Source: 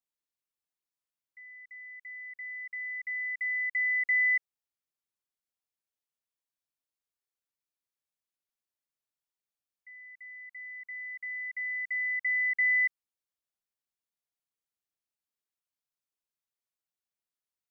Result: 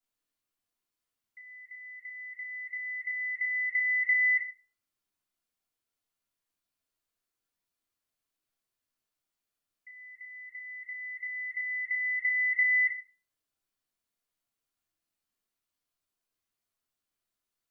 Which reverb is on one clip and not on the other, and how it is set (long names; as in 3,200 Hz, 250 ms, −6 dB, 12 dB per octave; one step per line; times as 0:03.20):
rectangular room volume 280 cubic metres, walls furnished, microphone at 3.1 metres